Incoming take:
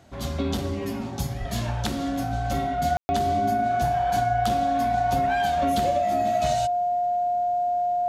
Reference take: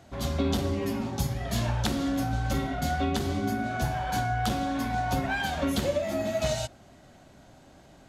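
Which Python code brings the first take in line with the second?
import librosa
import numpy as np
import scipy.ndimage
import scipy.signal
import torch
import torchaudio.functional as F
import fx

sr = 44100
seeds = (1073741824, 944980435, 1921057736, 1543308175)

y = fx.fix_declip(x, sr, threshold_db=-14.5)
y = fx.notch(y, sr, hz=710.0, q=30.0)
y = fx.highpass(y, sr, hz=140.0, slope=24, at=(1.39, 1.51), fade=0.02)
y = fx.fix_ambience(y, sr, seeds[0], print_start_s=0.0, print_end_s=0.5, start_s=2.97, end_s=3.09)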